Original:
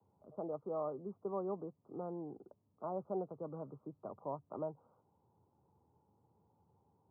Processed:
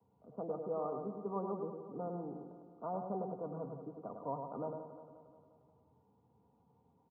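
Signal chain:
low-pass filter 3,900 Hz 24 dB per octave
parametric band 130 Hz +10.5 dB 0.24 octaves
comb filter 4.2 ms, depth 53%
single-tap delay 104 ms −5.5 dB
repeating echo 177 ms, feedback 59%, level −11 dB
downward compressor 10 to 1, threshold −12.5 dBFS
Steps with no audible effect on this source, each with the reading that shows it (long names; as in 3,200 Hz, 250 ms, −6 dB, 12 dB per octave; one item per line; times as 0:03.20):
low-pass filter 3,900 Hz: nothing at its input above 1,300 Hz
downward compressor, threshold −12.5 dBFS: peak of its input −26.5 dBFS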